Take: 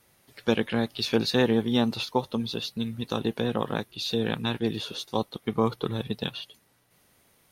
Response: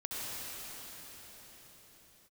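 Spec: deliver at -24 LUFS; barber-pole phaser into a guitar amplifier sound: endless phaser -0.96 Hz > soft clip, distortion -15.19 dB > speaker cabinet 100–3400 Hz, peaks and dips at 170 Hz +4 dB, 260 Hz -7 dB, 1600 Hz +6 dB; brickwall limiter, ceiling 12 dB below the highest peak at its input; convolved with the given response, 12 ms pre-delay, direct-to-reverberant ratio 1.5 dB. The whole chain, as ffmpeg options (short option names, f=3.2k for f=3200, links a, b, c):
-filter_complex "[0:a]alimiter=limit=-21dB:level=0:latency=1,asplit=2[a][b];[1:a]atrim=start_sample=2205,adelay=12[c];[b][c]afir=irnorm=-1:irlink=0,volume=-5.5dB[d];[a][d]amix=inputs=2:normalize=0,asplit=2[e][f];[f]afreqshift=-0.96[g];[e][g]amix=inputs=2:normalize=1,asoftclip=threshold=-28dB,highpass=100,equalizer=f=170:t=q:w=4:g=4,equalizer=f=260:t=q:w=4:g=-7,equalizer=f=1.6k:t=q:w=4:g=6,lowpass=f=3.4k:w=0.5412,lowpass=f=3.4k:w=1.3066,volume=14dB"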